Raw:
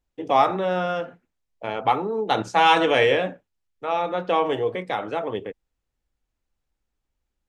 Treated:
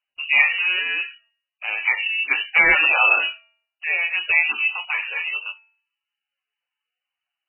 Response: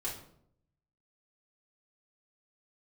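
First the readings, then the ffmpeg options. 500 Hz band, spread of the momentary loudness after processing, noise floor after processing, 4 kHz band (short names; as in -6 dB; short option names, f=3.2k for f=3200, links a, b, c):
-15.0 dB, 13 LU, under -85 dBFS, +3.5 dB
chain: -af "bandreject=f=244.8:t=h:w=4,bandreject=f=489.6:t=h:w=4,bandreject=f=734.4:t=h:w=4,bandreject=f=979.2:t=h:w=4,bandreject=f=1.224k:t=h:w=4,bandreject=f=1.4688k:t=h:w=4,bandreject=f=1.7136k:t=h:w=4,bandreject=f=1.9584k:t=h:w=4,bandreject=f=2.2032k:t=h:w=4,bandreject=f=2.448k:t=h:w=4,lowpass=f=2.6k:t=q:w=0.5098,lowpass=f=2.6k:t=q:w=0.6013,lowpass=f=2.6k:t=q:w=0.9,lowpass=f=2.6k:t=q:w=2.563,afreqshift=-3100,volume=2.5dB" -ar 12000 -c:a libmp3lame -b:a 8k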